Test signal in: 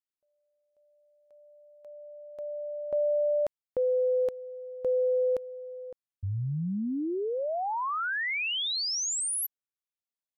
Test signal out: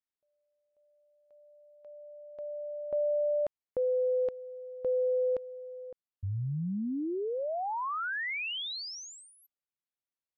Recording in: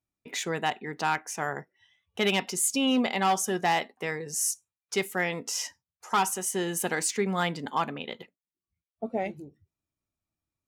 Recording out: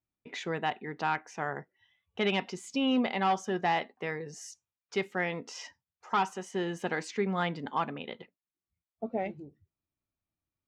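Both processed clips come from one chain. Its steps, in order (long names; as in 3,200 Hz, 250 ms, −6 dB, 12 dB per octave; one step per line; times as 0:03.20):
high-frequency loss of the air 180 metres
level −2 dB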